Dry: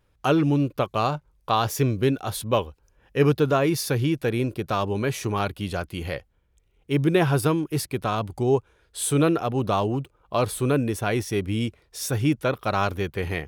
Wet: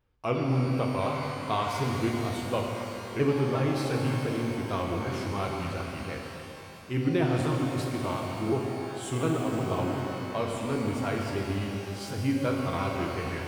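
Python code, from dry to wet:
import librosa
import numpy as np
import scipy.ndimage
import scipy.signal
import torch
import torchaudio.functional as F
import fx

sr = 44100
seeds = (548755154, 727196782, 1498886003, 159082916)

y = fx.pitch_ramps(x, sr, semitones=-3.0, every_ms=355)
y = fx.peak_eq(y, sr, hz=11000.0, db=-9.0, octaves=1.4)
y = fx.rev_shimmer(y, sr, seeds[0], rt60_s=3.2, semitones=12, shimmer_db=-8, drr_db=0.0)
y = F.gain(torch.from_numpy(y), -7.5).numpy()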